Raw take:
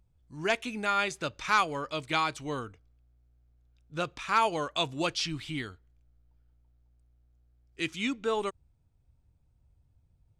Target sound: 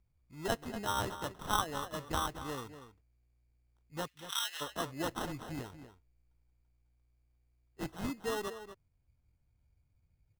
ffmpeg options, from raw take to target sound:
-filter_complex "[0:a]acrusher=samples=19:mix=1:aa=0.000001,asplit=3[a][b][c];[a]afade=t=out:st=4.06:d=0.02[d];[b]highpass=f=2.4k:t=q:w=1.9,afade=t=in:st=4.06:d=0.02,afade=t=out:st=4.6:d=0.02[e];[c]afade=t=in:st=4.6:d=0.02[f];[d][e][f]amix=inputs=3:normalize=0,asplit=2[g][h];[h]adelay=239.1,volume=-11dB,highshelf=f=4k:g=-5.38[i];[g][i]amix=inputs=2:normalize=0,volume=-6.5dB"

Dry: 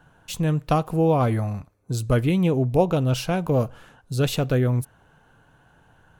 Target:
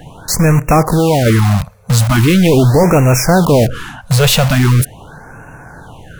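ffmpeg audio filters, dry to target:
-filter_complex "[0:a]asettb=1/sr,asplit=3[a][b][c];[a]atrim=end=0.844[d];[b]atrim=start=0.84:end=1.26,asetpts=PTS-STARTPTS,afade=t=in:d=0.004:c=qsin,afade=t=out:st=0.416:d=0.004:c=qsin,acompressor=threshold=-27dB:ratio=6[e];[c]atrim=start=1.256[f];[d][e]acrossfade=d=0.004:c1=hsin:c2=qsin[g];[g][f]acrossfade=d=0.004:c1=qsin:c2=hsin,apsyclip=24dB,asplit=2[h][i];[i]aeval=exprs='(mod(2.51*val(0)+1,2)-1)/2.51':c=same,volume=-5dB[j];[h][j]amix=inputs=2:normalize=0,afftfilt=real='re*(1-between(b*sr/1024,300*pow(4000/300,0.5+0.5*sin(2*PI*0.41*pts/sr))/1.41,300*pow(4000/300,0.5+0.5*sin(2*PI*0.41*pts/sr))*1.41))':imag='im*(1-between(b*sr/1024,300*pow(4000/300,0.5+0.5*sin(2*PI*0.41*pts/sr))/1.41,300*pow(4000/300,0.5+0.5*sin(2*PI*0.41*pts/sr))*1.41))':win_size=1024:overlap=0.75,volume=-5.5dB"

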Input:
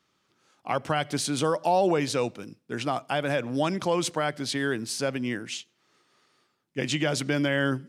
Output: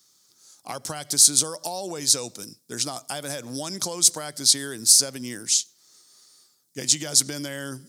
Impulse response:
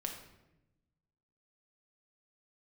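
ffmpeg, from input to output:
-af "acompressor=threshold=-27dB:ratio=6,aexciter=amount=13:drive=4.1:freq=4.1k,volume=-2.5dB"

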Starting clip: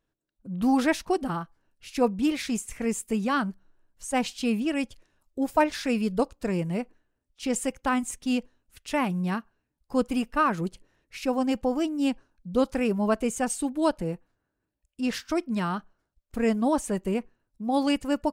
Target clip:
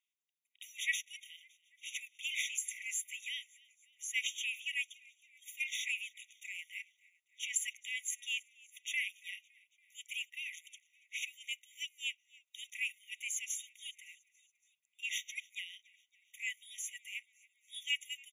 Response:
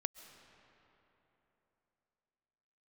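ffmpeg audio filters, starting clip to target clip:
-filter_complex "[0:a]asplit=5[a][b][c][d][e];[b]adelay=281,afreqshift=-92,volume=-24dB[f];[c]adelay=562,afreqshift=-184,volume=-28.4dB[g];[d]adelay=843,afreqshift=-276,volume=-32.9dB[h];[e]adelay=1124,afreqshift=-368,volume=-37.3dB[i];[a][f][g][h][i]amix=inputs=5:normalize=0,afftfilt=real='re*eq(mod(floor(b*sr/1024/1900),2),1)':imag='im*eq(mod(floor(b*sr/1024/1900),2),1)':win_size=1024:overlap=0.75,volume=1dB"

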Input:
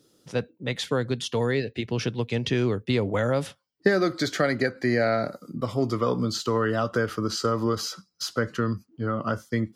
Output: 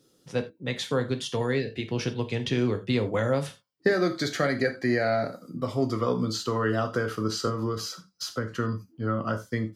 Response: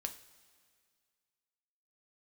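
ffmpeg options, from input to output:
-filter_complex "[0:a]asettb=1/sr,asplit=3[a][b][c];[a]atrim=end=7.474[d];[b]atrim=start=7.47:end=8.58,asetpts=PTS-STARTPTS,afade=t=in:d=0.004:c=qsin,afade=t=out:st=1.106:d=0.004:c=qsin,acrossover=split=280[e][f];[f]acompressor=threshold=-27dB:ratio=6[g];[e][g]amix=inputs=2:normalize=0[h];[c]atrim=start=8.576[i];[d][h]acrossfade=d=0.004:c1=hsin:c2=qsin[j];[j][i]acrossfade=d=0.004:c1=qsin:c2=hsin[k];[1:a]atrim=start_sample=2205,atrim=end_sample=4410[l];[k][l]afir=irnorm=-1:irlink=0"

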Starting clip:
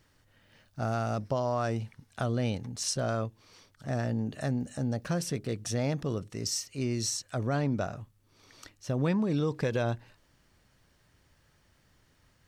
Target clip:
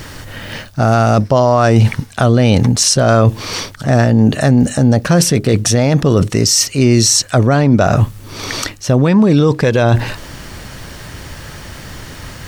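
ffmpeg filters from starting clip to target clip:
-af "areverse,acompressor=threshold=-42dB:ratio=8,areverse,alimiter=level_in=36dB:limit=-1dB:release=50:level=0:latency=1,volume=-1dB"

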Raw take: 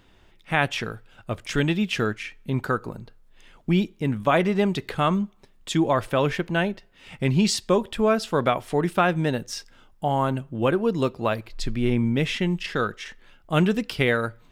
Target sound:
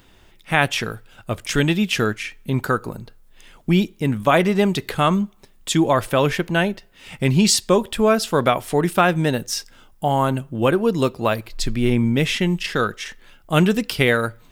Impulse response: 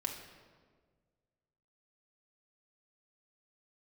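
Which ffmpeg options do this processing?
-af "highshelf=f=7.2k:g=11.5,volume=4dB"

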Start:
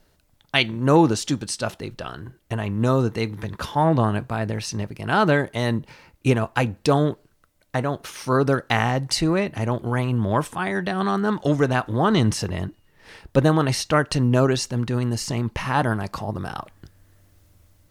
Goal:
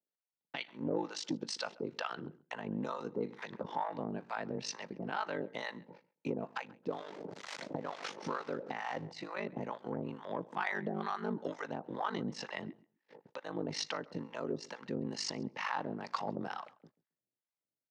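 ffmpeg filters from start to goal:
-filter_complex "[0:a]asettb=1/sr,asplit=3[a][b][c];[a]atrim=end=6.884[d];[b]atrim=start=6.88:end=9.09,asetpts=PTS-STARTPTS,afade=t=in:d=0.004:c=qsin,afade=t=out:st=2.206:d=0.004:c=qsin,aeval=exprs='val(0)+0.5*0.0316*sgn(val(0))':c=same[e];[c]atrim=start=9.086[f];[d][e]acrossfade=d=0.004:c1=hsin:c2=qsin[g];[g][f]acrossfade=d=0.004:c1=qsin:c2=hsin,agate=range=-33dB:threshold=-43dB:ratio=16:detection=peak,acompressor=threshold=-27dB:ratio=6,alimiter=limit=-20.5dB:level=0:latency=1:release=418,acrossover=split=690[h][i];[h]aeval=exprs='val(0)*(1-1/2+1/2*cos(2*PI*2.2*n/s))':c=same[j];[i]aeval=exprs='val(0)*(1-1/2-1/2*cos(2*PI*2.2*n/s))':c=same[k];[j][k]amix=inputs=2:normalize=0,asoftclip=type=tanh:threshold=-24dB,aeval=exprs='val(0)*sin(2*PI*25*n/s)':c=same,highpass=f=180:w=0.5412,highpass=f=180:w=1.3066,equalizer=f=500:t=q:w=4:g=5,equalizer=f=870:t=q:w=4:g=5,equalizer=f=2k:t=q:w=4:g=4,lowpass=f=5.9k:w=0.5412,lowpass=f=5.9k:w=1.3066,asplit=2[l][m];[m]adelay=135,lowpass=f=3.7k:p=1,volume=-22.5dB,asplit=2[n][o];[o]adelay=135,lowpass=f=3.7k:p=1,volume=0.16[p];[l][n][p]amix=inputs=3:normalize=0,volume=3dB"

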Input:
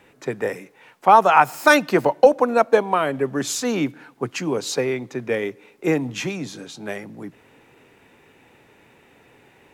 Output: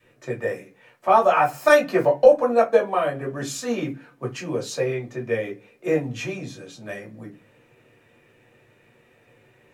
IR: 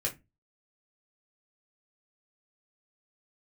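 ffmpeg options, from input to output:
-filter_complex "[0:a]adynamicequalizer=threshold=0.0316:dfrequency=710:dqfactor=2.5:tfrequency=710:tqfactor=2.5:attack=5:release=100:ratio=0.375:range=2.5:mode=boostabove:tftype=bell[a];[1:a]atrim=start_sample=2205[b];[a][b]afir=irnorm=-1:irlink=0,volume=-9dB"

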